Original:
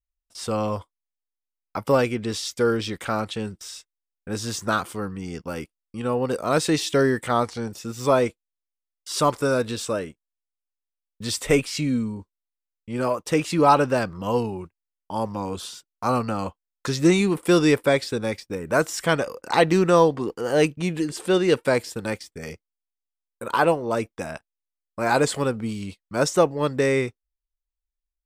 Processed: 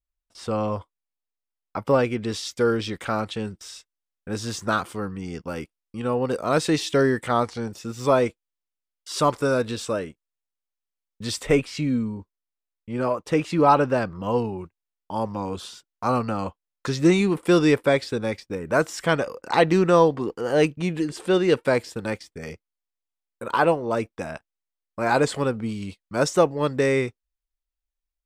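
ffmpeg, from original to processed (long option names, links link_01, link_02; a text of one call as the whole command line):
ffmpeg -i in.wav -af "asetnsamples=nb_out_samples=441:pad=0,asendcmd='2.12 lowpass f 6200;11.43 lowpass f 2700;14.58 lowpass f 4700;25.82 lowpass f 8300',lowpass=frequency=2700:poles=1" out.wav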